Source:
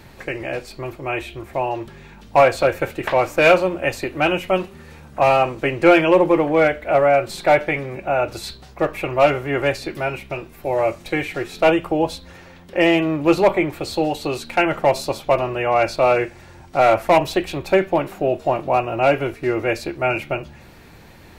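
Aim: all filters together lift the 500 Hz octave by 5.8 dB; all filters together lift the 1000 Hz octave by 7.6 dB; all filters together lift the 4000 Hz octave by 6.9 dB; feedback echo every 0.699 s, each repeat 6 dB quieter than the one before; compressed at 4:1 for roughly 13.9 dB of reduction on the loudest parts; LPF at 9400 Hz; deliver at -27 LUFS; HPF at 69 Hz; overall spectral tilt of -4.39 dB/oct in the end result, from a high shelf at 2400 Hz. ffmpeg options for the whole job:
-af "highpass=69,lowpass=9.4k,equalizer=f=500:t=o:g=4,equalizer=f=1k:t=o:g=8,highshelf=f=2.4k:g=6,equalizer=f=4k:t=o:g=3.5,acompressor=threshold=-20dB:ratio=4,aecho=1:1:699|1398|2097|2796|3495|4194:0.501|0.251|0.125|0.0626|0.0313|0.0157,volume=-4dB"

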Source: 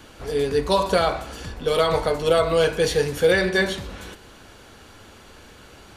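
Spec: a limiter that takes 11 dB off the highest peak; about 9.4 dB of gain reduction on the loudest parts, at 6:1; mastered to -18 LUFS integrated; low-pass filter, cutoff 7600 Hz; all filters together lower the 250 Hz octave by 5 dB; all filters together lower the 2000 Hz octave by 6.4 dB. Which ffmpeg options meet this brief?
-af "lowpass=7.6k,equalizer=f=250:t=o:g=-8.5,equalizer=f=2k:t=o:g=-8,acompressor=threshold=-26dB:ratio=6,volume=18.5dB,alimiter=limit=-9dB:level=0:latency=1"

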